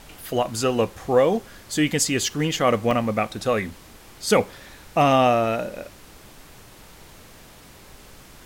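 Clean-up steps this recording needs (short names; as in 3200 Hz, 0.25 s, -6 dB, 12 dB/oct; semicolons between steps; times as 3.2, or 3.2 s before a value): interpolate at 2.91, 3.2 ms; noise print and reduce 20 dB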